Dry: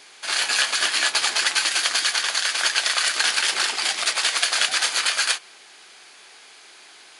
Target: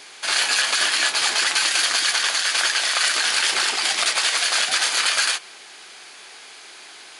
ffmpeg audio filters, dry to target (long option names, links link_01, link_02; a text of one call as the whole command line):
ffmpeg -i in.wav -af "alimiter=limit=-14dB:level=0:latency=1:release=41,volume=5dB" out.wav